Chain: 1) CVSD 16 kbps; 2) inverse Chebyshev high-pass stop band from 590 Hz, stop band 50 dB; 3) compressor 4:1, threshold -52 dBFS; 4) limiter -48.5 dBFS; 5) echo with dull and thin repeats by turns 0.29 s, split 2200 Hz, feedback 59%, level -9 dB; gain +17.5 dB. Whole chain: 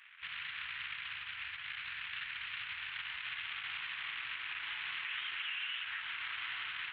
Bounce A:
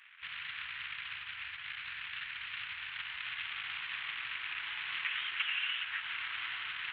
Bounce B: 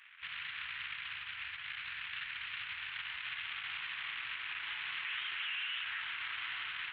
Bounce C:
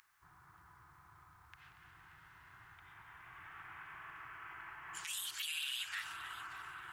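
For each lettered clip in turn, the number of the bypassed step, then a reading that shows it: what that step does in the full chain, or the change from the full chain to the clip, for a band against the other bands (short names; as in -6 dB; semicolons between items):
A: 4, crest factor change +6.0 dB; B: 3, mean gain reduction 1.5 dB; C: 1, 2 kHz band -7.5 dB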